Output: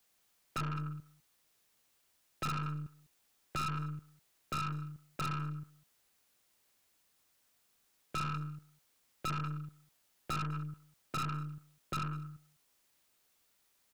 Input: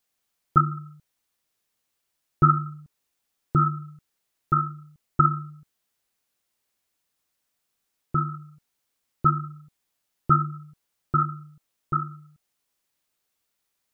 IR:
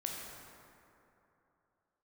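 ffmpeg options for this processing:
-filter_complex "[0:a]acrossover=split=170|930[a][b][c];[a]acompressor=threshold=-38dB:ratio=4[d];[b]acompressor=threshold=-41dB:ratio=4[e];[c]acompressor=threshold=-28dB:ratio=4[f];[d][e][f]amix=inputs=3:normalize=0,aeval=exprs='(tanh(100*val(0)+0.4)-tanh(0.4))/100':c=same,asplit=2[g][h];[h]aecho=0:1:200:0.075[i];[g][i]amix=inputs=2:normalize=0,volume=6dB"

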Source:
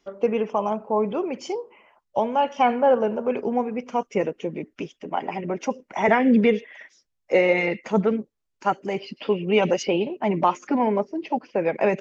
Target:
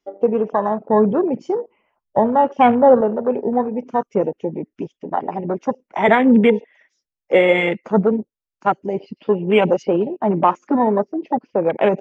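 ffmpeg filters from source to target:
-filter_complex "[0:a]afwtdn=0.0316,asettb=1/sr,asplit=3[a][b][c];[a]atrim=end=0.864[d];[b]atrim=start=0.86:end=3.01,asetpts=PTS-STARTPTS,afade=t=in:d=0.004:c=qsin,afade=t=out:st=2.146:d=0.004:c=qsin,lowshelf=f=250:g=10.5[e];[c]atrim=start=3.006[f];[d][e]acrossfade=d=0.004:c1=hsin:c2=qsin[g];[g][f]acrossfade=d=0.004:c1=qsin:c2=hsin,volume=5dB"

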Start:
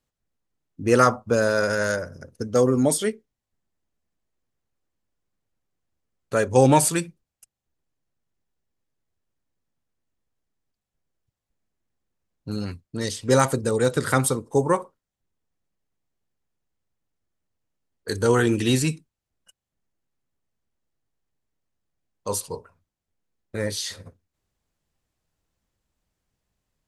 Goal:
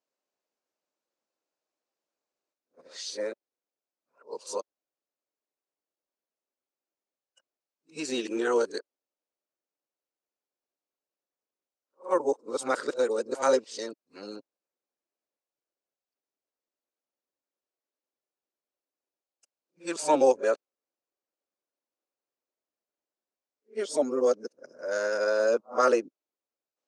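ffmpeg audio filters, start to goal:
-af "areverse,highpass=f=300:w=0.5412,highpass=f=300:w=1.3066,equalizer=f=570:t=q:w=4:g=5,equalizer=f=1.9k:t=q:w=4:g=-5,equalizer=f=3.3k:t=q:w=4:g=-5,lowpass=f=7k:w=0.5412,lowpass=f=7k:w=1.3066,volume=-6dB"

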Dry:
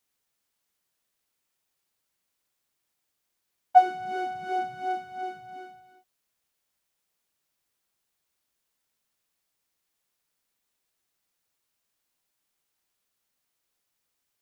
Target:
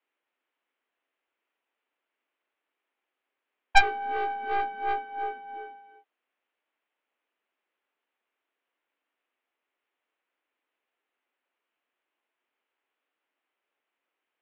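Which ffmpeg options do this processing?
-filter_complex "[0:a]asplit=2[a][b];[b]aeval=exprs='0.168*(abs(mod(val(0)/0.168+3,4)-2)-1)':c=same,volume=-8dB[c];[a][c]amix=inputs=2:normalize=0,highpass=f=210:t=q:w=0.5412,highpass=f=210:t=q:w=1.307,lowpass=f=2.9k:t=q:w=0.5176,lowpass=f=2.9k:t=q:w=0.7071,lowpass=f=2.9k:t=q:w=1.932,afreqshift=58,aeval=exprs='0.501*(cos(1*acos(clip(val(0)/0.501,-1,1)))-cos(1*PI/2))+0.224*(cos(2*acos(clip(val(0)/0.501,-1,1)))-cos(2*PI/2))+0.178*(cos(3*acos(clip(val(0)/0.501,-1,1)))-cos(3*PI/2))+0.0447*(cos(6*acos(clip(val(0)/0.501,-1,1)))-cos(6*PI/2))+0.0794*(cos(7*acos(clip(val(0)/0.501,-1,1)))-cos(7*PI/2))':c=same,volume=-1.5dB"

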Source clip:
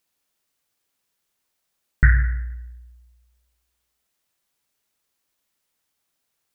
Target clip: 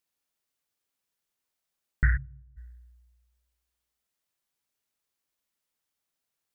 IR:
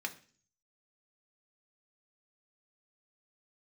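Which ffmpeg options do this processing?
-filter_complex "[0:a]asplit=3[a][b][c];[a]afade=t=out:st=2.16:d=0.02[d];[b]asuperpass=centerf=190:order=4:qfactor=0.92,afade=t=in:st=2.16:d=0.02,afade=t=out:st=2.56:d=0.02[e];[c]afade=t=in:st=2.56:d=0.02[f];[d][e][f]amix=inputs=3:normalize=0,volume=-8.5dB"

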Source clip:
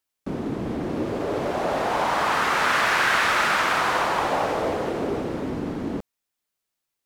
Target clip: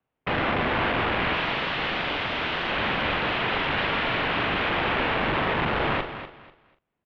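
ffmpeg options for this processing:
-filter_complex "[0:a]acrossover=split=110|470|1000[a][b][c][d];[a]acompressor=threshold=-44dB:ratio=4[e];[b]acompressor=threshold=-34dB:ratio=4[f];[c]acompressor=threshold=-39dB:ratio=4[g];[d]acompressor=threshold=-32dB:ratio=4[h];[e][f][g][h]amix=inputs=4:normalize=0,tiltshelf=f=1.3k:g=7,asettb=1/sr,asplit=3[i][j][k];[i]atrim=end=1.344[l];[j]atrim=start=1.34:end=2.7,asetpts=PTS-STARTPTS,afade=t=in:d=0.004:c=qsin,afade=t=out:st=1.356:d=0.004:c=qsin,acontrast=89[m];[k]atrim=start=2.696[n];[l][m]acrossfade=d=0.004:c1=hsin:c2=qsin[o];[o][n]acrossfade=d=0.004:c1=qsin:c2=hsin,highshelf=f=2.3k:g=-6,aeval=exprs='(mod(23.7*val(0)+1,2)-1)/23.7':c=same,asplit=2[p][q];[q]adelay=41,volume=-7.5dB[r];[p][r]amix=inputs=2:normalize=0,aecho=1:1:246|492|738:0.282|0.0676|0.0162,highpass=f=210:t=q:w=0.5412,highpass=f=210:t=q:w=1.307,lowpass=f=3.4k:t=q:w=0.5176,lowpass=f=3.4k:t=q:w=0.7071,lowpass=f=3.4k:t=q:w=1.932,afreqshift=-170,volume=8dB"

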